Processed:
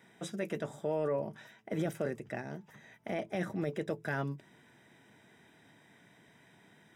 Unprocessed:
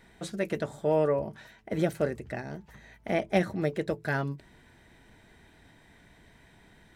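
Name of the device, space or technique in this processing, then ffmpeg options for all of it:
PA system with an anti-feedback notch: -af "highpass=f=120:w=0.5412,highpass=f=120:w=1.3066,asuperstop=centerf=4300:order=20:qfactor=7.3,alimiter=limit=-21.5dB:level=0:latency=1:release=11,volume=-3dB"

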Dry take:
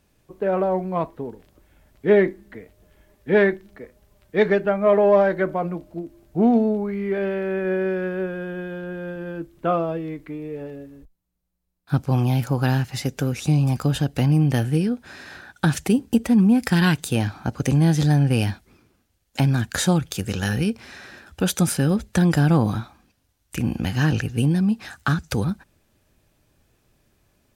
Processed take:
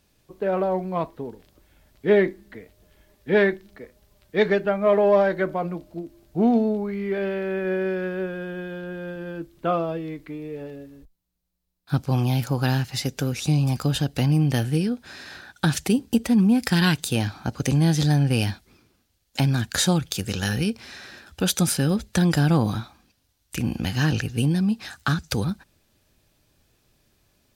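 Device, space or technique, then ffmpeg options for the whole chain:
presence and air boost: -af "equalizer=f=4.3k:t=o:w=1.2:g=6,highshelf=f=11k:g=5.5,volume=-2dB"

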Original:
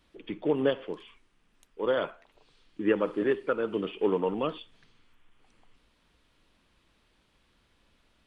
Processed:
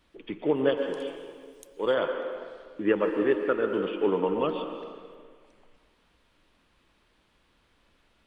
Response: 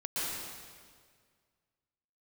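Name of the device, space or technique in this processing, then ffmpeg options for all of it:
filtered reverb send: -filter_complex "[0:a]asettb=1/sr,asplit=3[a][b][c];[a]atrim=end=0.774[d];[b]atrim=start=0.77:end=1.94,asetpts=PTS-STARTPTS,afade=t=in:d=0.004:c=qsin,afade=t=out:st=1.166:d=0.004:c=qsin,bass=f=250:g=0,treble=f=4k:g=15[e];[c]atrim=start=1.936[f];[d][e]acrossfade=d=0.004:c1=hsin:c2=qsin[g];[g][f]acrossfade=d=0.004:c1=qsin:c2=hsin,asplit=2[h][i];[i]highpass=270,lowpass=3.1k[j];[1:a]atrim=start_sample=2205[k];[j][k]afir=irnorm=-1:irlink=0,volume=-9dB[l];[h][l]amix=inputs=2:normalize=0"

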